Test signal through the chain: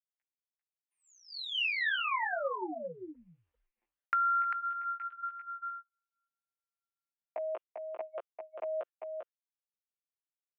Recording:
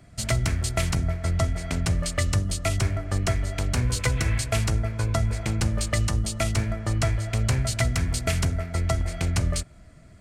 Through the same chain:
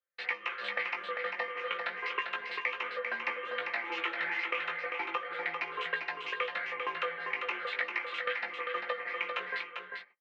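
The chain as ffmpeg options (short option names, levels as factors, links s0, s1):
-filter_complex "[0:a]afftfilt=real='re*pow(10,9/40*sin(2*PI*(0.83*log(max(b,1)*sr/1024/100)/log(2)-(1.7)*(pts-256)/sr)))':imag='im*pow(10,9/40*sin(2*PI*(0.83*log(max(b,1)*sr/1024/100)/log(2)-(1.7)*(pts-256)/sr)))':win_size=1024:overlap=0.75,flanger=delay=15:depth=3.3:speed=0.35,aecho=1:1:5.8:0.6,agate=range=0.0126:threshold=0.00891:ratio=16:detection=peak,apsyclip=8.41,aderivative,highpass=f=530:t=q:w=0.5412,highpass=f=530:t=q:w=1.307,lowpass=f=2700:t=q:w=0.5176,lowpass=f=2700:t=q:w=0.7071,lowpass=f=2700:t=q:w=1.932,afreqshift=-160,acompressor=threshold=0.0251:ratio=3,asplit=2[s0][s1];[s1]aecho=0:1:396:0.531[s2];[s0][s2]amix=inputs=2:normalize=0"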